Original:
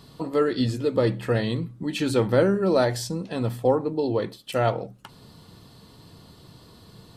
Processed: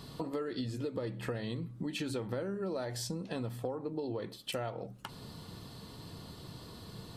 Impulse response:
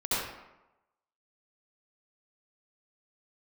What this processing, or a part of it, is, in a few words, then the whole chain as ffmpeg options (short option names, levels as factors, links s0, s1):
serial compression, leveller first: -af "acompressor=threshold=0.0631:ratio=2.5,acompressor=threshold=0.0141:ratio=4,volume=1.12"